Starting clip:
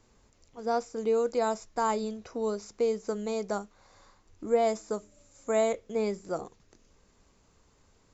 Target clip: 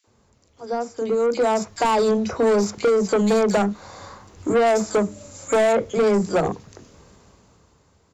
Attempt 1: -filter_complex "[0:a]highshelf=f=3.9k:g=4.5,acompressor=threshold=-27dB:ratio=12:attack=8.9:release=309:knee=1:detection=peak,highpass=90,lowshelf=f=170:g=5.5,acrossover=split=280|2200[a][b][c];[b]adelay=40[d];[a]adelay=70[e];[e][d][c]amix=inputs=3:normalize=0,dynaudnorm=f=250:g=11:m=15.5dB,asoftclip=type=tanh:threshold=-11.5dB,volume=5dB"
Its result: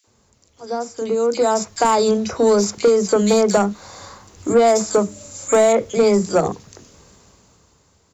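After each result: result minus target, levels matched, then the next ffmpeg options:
8000 Hz band +5.5 dB; soft clip: distortion -8 dB
-filter_complex "[0:a]highshelf=f=3.9k:g=-5,acompressor=threshold=-27dB:ratio=12:attack=8.9:release=309:knee=1:detection=peak,highpass=90,lowshelf=f=170:g=5.5,acrossover=split=280|2200[a][b][c];[b]adelay=40[d];[a]adelay=70[e];[e][d][c]amix=inputs=3:normalize=0,dynaudnorm=f=250:g=11:m=15.5dB,asoftclip=type=tanh:threshold=-11.5dB,volume=5dB"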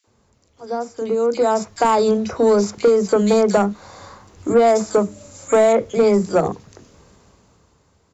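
soft clip: distortion -8 dB
-filter_complex "[0:a]highshelf=f=3.9k:g=-5,acompressor=threshold=-27dB:ratio=12:attack=8.9:release=309:knee=1:detection=peak,highpass=90,lowshelf=f=170:g=5.5,acrossover=split=280|2200[a][b][c];[b]adelay=40[d];[a]adelay=70[e];[e][d][c]amix=inputs=3:normalize=0,dynaudnorm=f=250:g=11:m=15.5dB,asoftclip=type=tanh:threshold=-19dB,volume=5dB"

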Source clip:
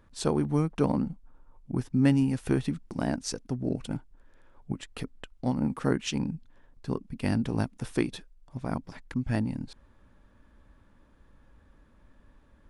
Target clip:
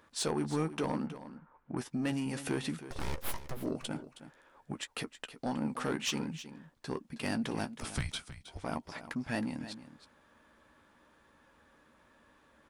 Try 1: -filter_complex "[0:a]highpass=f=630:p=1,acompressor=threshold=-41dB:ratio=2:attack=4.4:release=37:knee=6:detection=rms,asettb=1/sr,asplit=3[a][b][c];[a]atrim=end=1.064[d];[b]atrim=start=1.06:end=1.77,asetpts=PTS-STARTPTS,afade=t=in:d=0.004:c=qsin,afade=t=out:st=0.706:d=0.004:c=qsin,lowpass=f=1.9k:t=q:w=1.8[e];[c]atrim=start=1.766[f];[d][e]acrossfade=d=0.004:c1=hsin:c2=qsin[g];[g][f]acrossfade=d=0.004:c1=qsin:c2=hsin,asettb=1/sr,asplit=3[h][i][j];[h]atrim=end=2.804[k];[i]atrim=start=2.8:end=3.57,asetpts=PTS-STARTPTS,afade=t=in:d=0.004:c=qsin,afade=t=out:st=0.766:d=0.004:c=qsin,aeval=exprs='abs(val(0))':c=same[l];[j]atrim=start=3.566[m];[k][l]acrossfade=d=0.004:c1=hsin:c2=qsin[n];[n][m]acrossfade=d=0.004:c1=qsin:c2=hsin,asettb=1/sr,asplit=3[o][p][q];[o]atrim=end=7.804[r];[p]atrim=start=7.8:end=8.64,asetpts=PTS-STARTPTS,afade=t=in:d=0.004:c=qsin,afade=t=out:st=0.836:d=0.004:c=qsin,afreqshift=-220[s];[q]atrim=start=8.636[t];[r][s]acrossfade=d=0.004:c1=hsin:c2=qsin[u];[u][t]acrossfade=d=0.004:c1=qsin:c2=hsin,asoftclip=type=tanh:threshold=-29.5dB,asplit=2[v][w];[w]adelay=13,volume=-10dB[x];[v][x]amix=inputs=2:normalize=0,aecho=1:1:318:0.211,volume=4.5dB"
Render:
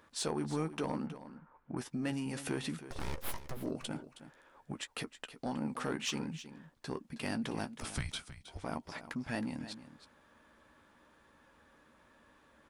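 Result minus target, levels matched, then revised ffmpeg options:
compressor: peak gain reduction +4 dB
-filter_complex "[0:a]highpass=f=630:p=1,acompressor=threshold=-33dB:ratio=2:attack=4.4:release=37:knee=6:detection=rms,asettb=1/sr,asplit=3[a][b][c];[a]atrim=end=1.064[d];[b]atrim=start=1.06:end=1.77,asetpts=PTS-STARTPTS,afade=t=in:d=0.004:c=qsin,afade=t=out:st=0.706:d=0.004:c=qsin,lowpass=f=1.9k:t=q:w=1.8[e];[c]atrim=start=1.766[f];[d][e]acrossfade=d=0.004:c1=hsin:c2=qsin[g];[g][f]acrossfade=d=0.004:c1=qsin:c2=hsin,asettb=1/sr,asplit=3[h][i][j];[h]atrim=end=2.804[k];[i]atrim=start=2.8:end=3.57,asetpts=PTS-STARTPTS,afade=t=in:d=0.004:c=qsin,afade=t=out:st=0.766:d=0.004:c=qsin,aeval=exprs='abs(val(0))':c=same[l];[j]atrim=start=3.566[m];[k][l]acrossfade=d=0.004:c1=hsin:c2=qsin[n];[n][m]acrossfade=d=0.004:c1=qsin:c2=hsin,asettb=1/sr,asplit=3[o][p][q];[o]atrim=end=7.804[r];[p]atrim=start=7.8:end=8.64,asetpts=PTS-STARTPTS,afade=t=in:d=0.004:c=qsin,afade=t=out:st=0.836:d=0.004:c=qsin,afreqshift=-220[s];[q]atrim=start=8.636[t];[r][s]acrossfade=d=0.004:c1=hsin:c2=qsin[u];[u][t]acrossfade=d=0.004:c1=qsin:c2=hsin,asoftclip=type=tanh:threshold=-29.5dB,asplit=2[v][w];[w]adelay=13,volume=-10dB[x];[v][x]amix=inputs=2:normalize=0,aecho=1:1:318:0.211,volume=4.5dB"

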